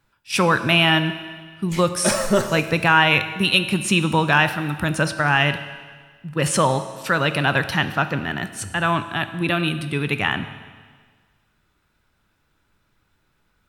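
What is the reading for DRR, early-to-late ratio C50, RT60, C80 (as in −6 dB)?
10.0 dB, 11.5 dB, 1.6 s, 12.5 dB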